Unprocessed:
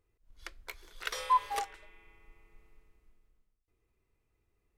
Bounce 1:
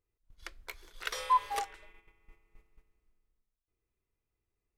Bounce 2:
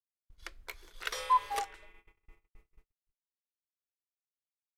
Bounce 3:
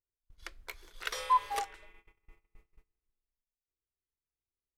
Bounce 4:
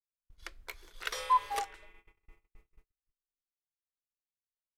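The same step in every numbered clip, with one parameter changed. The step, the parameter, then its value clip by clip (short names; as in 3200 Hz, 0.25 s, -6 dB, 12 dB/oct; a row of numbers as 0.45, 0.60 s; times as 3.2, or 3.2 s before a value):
gate, range: -9, -59, -23, -39 dB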